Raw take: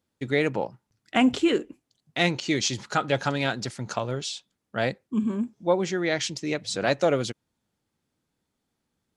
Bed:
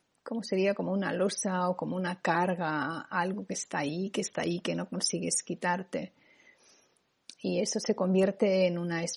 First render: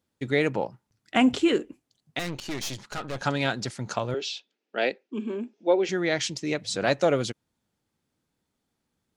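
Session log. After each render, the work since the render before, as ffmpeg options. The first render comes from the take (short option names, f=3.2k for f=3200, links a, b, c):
-filter_complex "[0:a]asettb=1/sr,asplit=3[a][b][c];[a]atrim=end=2.194[d];[b]atrim=start=2.19:end=3.22,asetpts=PTS-STARTPTS,afade=t=in:d=0.004:c=qsin,afade=t=out:st=1.026:d=0.004:c=qsin,aeval=exprs='(tanh(28.2*val(0)+0.8)-tanh(0.8))/28.2':c=same[e];[c]atrim=start=3.216[f];[d][e]acrossfade=d=0.004:c1=hsin:c2=qsin[g];[g][f]acrossfade=d=0.004:c1=qsin:c2=hsin,asettb=1/sr,asplit=3[h][i][j];[h]atrim=end=4.144[k];[i]atrim=start=4.14:end=5.89,asetpts=PTS-STARTPTS,afade=t=in:d=0.004:c=qsin,afade=t=out:st=1.746:d=0.004:c=qsin,highpass=f=270:w=0.5412,highpass=f=270:w=1.3066,equalizer=f=410:t=q:w=4:g=6,equalizer=f=1.1k:t=q:w=4:g=-8,equalizer=f=2.6k:t=q:w=4:g=7,lowpass=f=5.8k:w=0.5412,lowpass=f=5.8k:w=1.3066[l];[j]atrim=start=5.886[m];[k][l]acrossfade=d=0.004:c1=hsin:c2=qsin[n];[n][m]acrossfade=d=0.004:c1=qsin:c2=hsin"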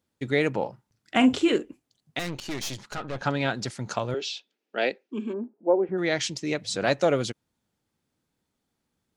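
-filter_complex "[0:a]asettb=1/sr,asplit=3[a][b][c];[a]atrim=end=0.584[d];[b]atrim=start=0.58:end=1.56,asetpts=PTS-STARTPTS,afade=t=in:d=0.004:c=qsin,afade=t=out:st=0.976:d=0.004:c=qsin,asplit=2[e][f];[f]adelay=43,volume=-11dB[g];[e][g]amix=inputs=2:normalize=0,atrim=end_sample=43218[h];[c]atrim=start=1.556[i];[d][h]acrossfade=d=0.004:c1=hsin:c2=qsin[j];[j][i]acrossfade=d=0.004:c1=qsin:c2=hsin,asettb=1/sr,asplit=3[k][l][m];[k]atrim=end=2.954[n];[l]atrim=start=2.95:end=3.55,asetpts=PTS-STARTPTS,afade=t=in:d=0.004:c=qsin,afade=t=out:st=0.596:d=0.004:c=qsin,aemphasis=mode=reproduction:type=50fm[o];[m]atrim=start=3.546[p];[n][o]acrossfade=d=0.004:c1=hsin:c2=qsin[q];[q][p]acrossfade=d=0.004:c1=qsin:c2=hsin,asplit=3[r][s][t];[r]afade=t=out:st=5.32:d=0.02[u];[s]lowpass=f=1.2k:w=0.5412,lowpass=f=1.2k:w=1.3066,afade=t=in:st=5.32:d=0.02,afade=t=out:st=5.97:d=0.02[v];[t]afade=t=in:st=5.97:d=0.02[w];[u][v][w]amix=inputs=3:normalize=0"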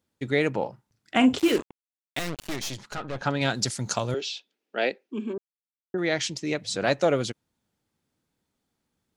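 -filter_complex "[0:a]asplit=3[a][b][c];[a]afade=t=out:st=1.38:d=0.02[d];[b]acrusher=bits=4:mix=0:aa=0.5,afade=t=in:st=1.38:d=0.02,afade=t=out:st=2.55:d=0.02[e];[c]afade=t=in:st=2.55:d=0.02[f];[d][e][f]amix=inputs=3:normalize=0,asettb=1/sr,asplit=3[g][h][i];[g]atrim=end=3.414[j];[h]atrim=start=3.41:end=4.21,asetpts=PTS-STARTPTS,afade=t=in:d=0.004:c=qsin,afade=t=out:st=0.796:d=0.004:c=qsin,bass=f=250:g=3,treble=f=4k:g=12[k];[i]atrim=start=4.206[l];[j][k]acrossfade=d=0.004:c1=hsin:c2=qsin[m];[m][l]acrossfade=d=0.004:c1=qsin:c2=hsin,asplit=3[n][o][p];[n]atrim=end=5.38,asetpts=PTS-STARTPTS,afade=t=out:st=5.376:d=0.004:c=hsin[q];[o]atrim=start=5.38:end=5.94,asetpts=PTS-STARTPTS,volume=0[r];[p]atrim=start=5.94,asetpts=PTS-STARTPTS,afade=t=in:d=0.004:c=hsin[s];[q][r][s]concat=n=3:v=0:a=1"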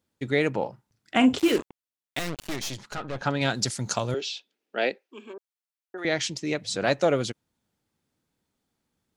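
-filter_complex "[0:a]asettb=1/sr,asplit=3[a][b][c];[a]atrim=end=4.994[d];[b]atrim=start=4.99:end=6.05,asetpts=PTS-STARTPTS,afade=t=in:d=0.004:c=qsin,afade=t=out:st=1.056:d=0.004:c=qsin,highpass=610[e];[c]atrim=start=6.046[f];[d][e]acrossfade=d=0.004:c1=hsin:c2=qsin[g];[g][f]acrossfade=d=0.004:c1=qsin:c2=hsin"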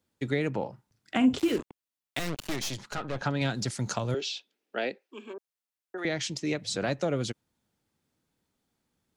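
-filter_complex "[0:a]acrossover=split=3300[a][b];[b]alimiter=limit=-20.5dB:level=0:latency=1:release=298[c];[a][c]amix=inputs=2:normalize=0,acrossover=split=270[d][e];[e]acompressor=threshold=-29dB:ratio=4[f];[d][f]amix=inputs=2:normalize=0"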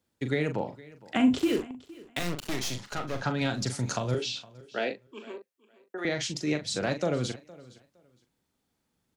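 -filter_complex "[0:a]asplit=2[a][b];[b]adelay=40,volume=-8dB[c];[a][c]amix=inputs=2:normalize=0,aecho=1:1:463|926:0.0891|0.0178"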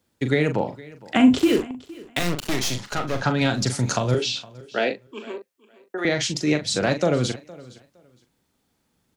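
-af "volume=7.5dB"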